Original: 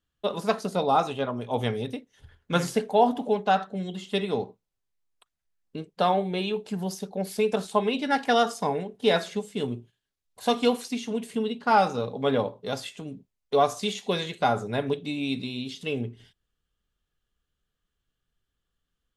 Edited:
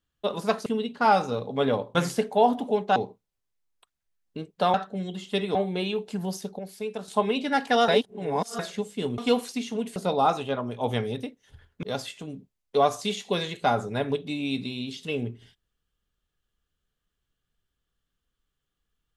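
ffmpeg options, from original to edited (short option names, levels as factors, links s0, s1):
-filter_complex "[0:a]asplit=13[s0][s1][s2][s3][s4][s5][s6][s7][s8][s9][s10][s11][s12];[s0]atrim=end=0.662[s13];[s1]atrim=start=11.318:end=12.612[s14];[s2]atrim=start=2.528:end=3.542[s15];[s3]atrim=start=4.348:end=6.132[s16];[s4]atrim=start=3.538:end=4.352[s17];[s5]atrim=start=6.128:end=7.172[s18];[s6]atrim=start=7.168:end=7.662,asetpts=PTS-STARTPTS,volume=0.376[s19];[s7]atrim=start=7.658:end=8.462[s20];[s8]atrim=start=8.458:end=9.172,asetpts=PTS-STARTPTS,areverse[s21];[s9]atrim=start=9.168:end=9.762[s22];[s10]atrim=start=10.538:end=11.322[s23];[s11]atrim=start=0.658:end=2.532[s24];[s12]atrim=start=12.608[s25];[s13][s14]acrossfade=d=0.004:c1=hsin:c2=hsin[s26];[s26][s15]acrossfade=d=0.004:c1=hsin:c2=hsin[s27];[s27][s16]acrossfade=d=0.004:c1=hsin:c2=hsin[s28];[s28][s17]acrossfade=d=0.004:c1=hsin:c2=hsin[s29];[s29][s18]acrossfade=d=0.004:c1=hsin:c2=hsin[s30];[s30][s19]acrossfade=d=0.004:c1=hsin:c2=hsin[s31];[s31][s20]acrossfade=d=0.004:c1=hsin:c2=hsin[s32];[s32][s21]acrossfade=d=0.004:c1=hsin:c2=hsin[s33];[s33][s22]acrossfade=d=0.004:c1=hsin:c2=hsin[s34];[s34][s23]acrossfade=d=0.004:c1=hsin:c2=hsin[s35];[s35][s24]acrossfade=d=0.004:c1=hsin:c2=hsin[s36];[s36][s25]acrossfade=d=0.004:c1=hsin:c2=hsin"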